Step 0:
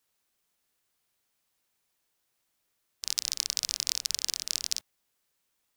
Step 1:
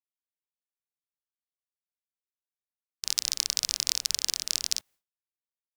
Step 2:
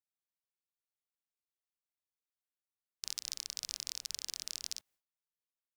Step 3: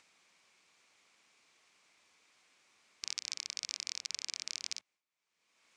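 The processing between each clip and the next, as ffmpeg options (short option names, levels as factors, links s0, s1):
-af "agate=range=0.0224:threshold=0.002:ratio=3:detection=peak,volume=1.33"
-af "alimiter=limit=0.282:level=0:latency=1:release=345,volume=0.531"
-af "highpass=130,equalizer=f=130:t=q:w=4:g=-8,equalizer=f=1100:t=q:w=4:g=4,equalizer=f=2300:t=q:w=4:g=9,lowpass=f=7400:w=0.5412,lowpass=f=7400:w=1.3066,acompressor=mode=upward:threshold=0.00398:ratio=2.5,volume=1.12"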